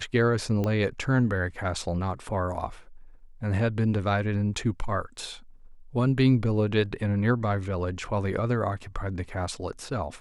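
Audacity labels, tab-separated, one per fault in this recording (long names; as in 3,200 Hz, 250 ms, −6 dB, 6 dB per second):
0.640000	0.640000	click −17 dBFS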